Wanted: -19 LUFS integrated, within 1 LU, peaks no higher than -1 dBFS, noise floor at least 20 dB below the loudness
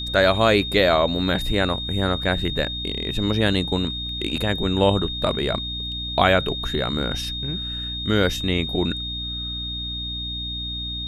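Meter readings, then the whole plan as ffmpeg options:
hum 60 Hz; highest harmonic 300 Hz; hum level -31 dBFS; steady tone 3.7 kHz; tone level -28 dBFS; loudness -22.5 LUFS; peak level -3.0 dBFS; loudness target -19.0 LUFS
-> -af "bandreject=f=60:t=h:w=4,bandreject=f=120:t=h:w=4,bandreject=f=180:t=h:w=4,bandreject=f=240:t=h:w=4,bandreject=f=300:t=h:w=4"
-af "bandreject=f=3700:w=30"
-af "volume=1.5,alimiter=limit=0.891:level=0:latency=1"

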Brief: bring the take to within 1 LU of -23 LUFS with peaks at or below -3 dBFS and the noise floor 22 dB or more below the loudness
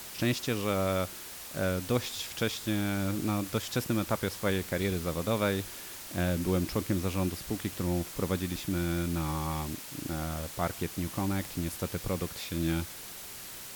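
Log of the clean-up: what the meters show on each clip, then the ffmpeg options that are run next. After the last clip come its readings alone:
noise floor -44 dBFS; noise floor target -54 dBFS; loudness -32.0 LUFS; peak level -14.5 dBFS; loudness target -23.0 LUFS
-> -af "afftdn=nr=10:nf=-44"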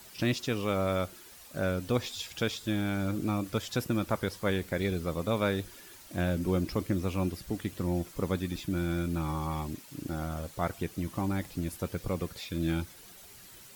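noise floor -52 dBFS; noise floor target -55 dBFS
-> -af "afftdn=nr=6:nf=-52"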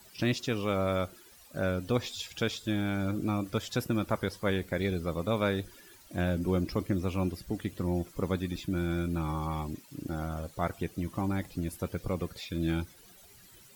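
noise floor -56 dBFS; loudness -32.5 LUFS; peak level -15.0 dBFS; loudness target -23.0 LUFS
-> -af "volume=2.99"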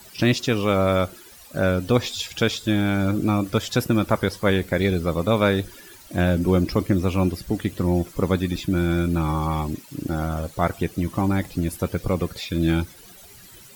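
loudness -23.0 LUFS; peak level -5.5 dBFS; noise floor -46 dBFS

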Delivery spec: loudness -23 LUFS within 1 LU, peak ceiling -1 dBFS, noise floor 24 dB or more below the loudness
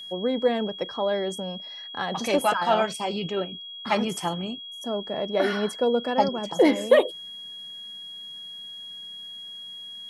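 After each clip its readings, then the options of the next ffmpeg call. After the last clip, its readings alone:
steady tone 3.3 kHz; tone level -37 dBFS; loudness -25.5 LUFS; peak level -6.5 dBFS; loudness target -23.0 LUFS
-> -af "bandreject=f=3300:w=30"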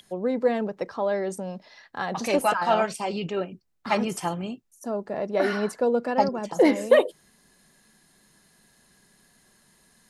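steady tone not found; loudness -25.5 LUFS; peak level -6.5 dBFS; loudness target -23.0 LUFS
-> -af "volume=1.33"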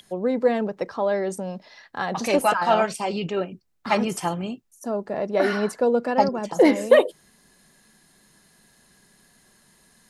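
loudness -23.0 LUFS; peak level -4.0 dBFS; noise floor -59 dBFS

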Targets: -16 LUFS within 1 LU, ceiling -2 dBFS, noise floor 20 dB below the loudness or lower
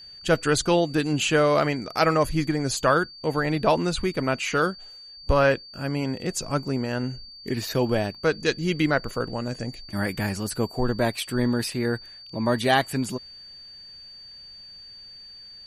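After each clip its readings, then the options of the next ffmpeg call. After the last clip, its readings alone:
steady tone 4.6 kHz; tone level -42 dBFS; loudness -24.5 LUFS; peak level -7.0 dBFS; loudness target -16.0 LUFS
-> -af "bandreject=f=4600:w=30"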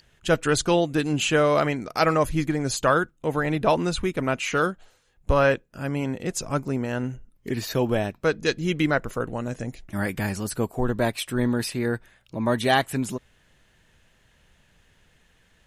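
steady tone not found; loudness -25.0 LUFS; peak level -7.0 dBFS; loudness target -16.0 LUFS
-> -af "volume=2.82,alimiter=limit=0.794:level=0:latency=1"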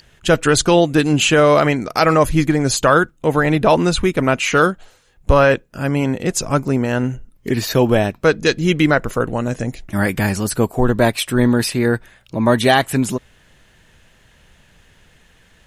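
loudness -16.5 LUFS; peak level -2.0 dBFS; noise floor -53 dBFS

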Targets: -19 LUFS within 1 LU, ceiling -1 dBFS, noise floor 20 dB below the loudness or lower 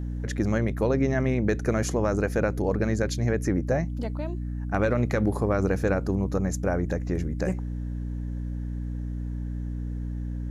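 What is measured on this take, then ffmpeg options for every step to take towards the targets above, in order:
hum 60 Hz; highest harmonic 300 Hz; hum level -28 dBFS; loudness -27.5 LUFS; peak level -11.0 dBFS; loudness target -19.0 LUFS
-> -af "bandreject=f=60:t=h:w=6,bandreject=f=120:t=h:w=6,bandreject=f=180:t=h:w=6,bandreject=f=240:t=h:w=6,bandreject=f=300:t=h:w=6"
-af "volume=2.66"

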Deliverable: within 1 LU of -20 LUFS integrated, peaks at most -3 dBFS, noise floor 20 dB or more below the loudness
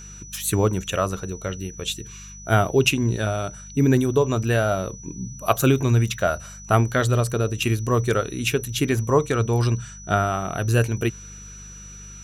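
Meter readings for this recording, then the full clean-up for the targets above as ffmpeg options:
hum 50 Hz; highest harmonic 200 Hz; hum level -42 dBFS; steady tone 5.9 kHz; tone level -41 dBFS; loudness -22.5 LUFS; peak level -4.5 dBFS; loudness target -20.0 LUFS
-> -af "bandreject=f=50:t=h:w=4,bandreject=f=100:t=h:w=4,bandreject=f=150:t=h:w=4,bandreject=f=200:t=h:w=4"
-af "bandreject=f=5900:w=30"
-af "volume=1.33,alimiter=limit=0.708:level=0:latency=1"

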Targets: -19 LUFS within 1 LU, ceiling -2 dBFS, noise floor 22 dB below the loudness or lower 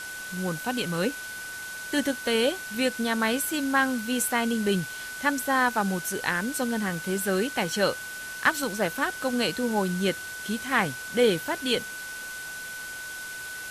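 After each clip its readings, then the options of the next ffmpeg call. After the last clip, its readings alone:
steady tone 1.5 kHz; tone level -36 dBFS; noise floor -38 dBFS; noise floor target -50 dBFS; loudness -27.5 LUFS; peak level -8.0 dBFS; loudness target -19.0 LUFS
-> -af "bandreject=f=1500:w=30"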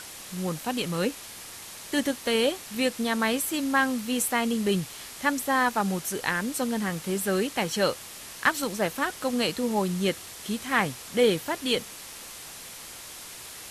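steady tone not found; noise floor -43 dBFS; noise floor target -49 dBFS
-> -af "afftdn=nr=6:nf=-43"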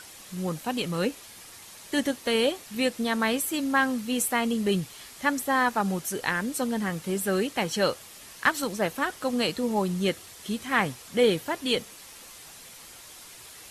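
noise floor -47 dBFS; noise floor target -49 dBFS
-> -af "afftdn=nr=6:nf=-47"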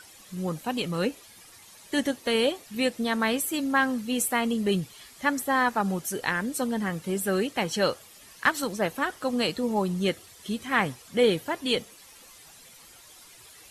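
noise floor -51 dBFS; loudness -27.0 LUFS; peak level -8.5 dBFS; loudness target -19.0 LUFS
-> -af "volume=2.51,alimiter=limit=0.794:level=0:latency=1"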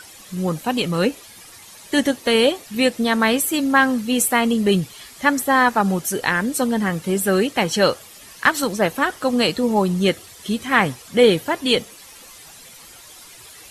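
loudness -19.5 LUFS; peak level -2.0 dBFS; noise floor -43 dBFS

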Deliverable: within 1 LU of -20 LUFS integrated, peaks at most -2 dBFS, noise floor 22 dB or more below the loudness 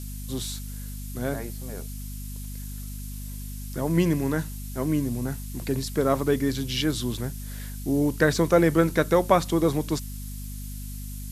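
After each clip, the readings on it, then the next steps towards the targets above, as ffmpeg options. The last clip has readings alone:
hum 50 Hz; highest harmonic 250 Hz; hum level -33 dBFS; noise floor -35 dBFS; noise floor target -48 dBFS; loudness -25.5 LUFS; peak level -5.0 dBFS; loudness target -20.0 LUFS
-> -af "bandreject=f=50:t=h:w=6,bandreject=f=100:t=h:w=6,bandreject=f=150:t=h:w=6,bandreject=f=200:t=h:w=6,bandreject=f=250:t=h:w=6"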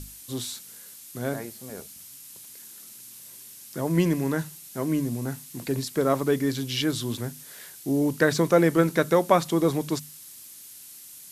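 hum not found; noise floor -46 dBFS; noise floor target -48 dBFS
-> -af "afftdn=nr=6:nf=-46"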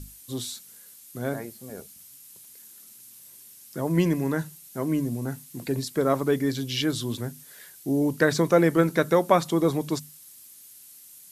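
noise floor -49 dBFS; loudness -25.5 LUFS; peak level -5.5 dBFS; loudness target -20.0 LUFS
-> -af "volume=1.88,alimiter=limit=0.794:level=0:latency=1"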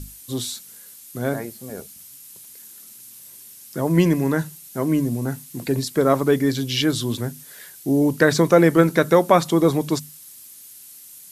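loudness -20.5 LUFS; peak level -2.0 dBFS; noise floor -44 dBFS

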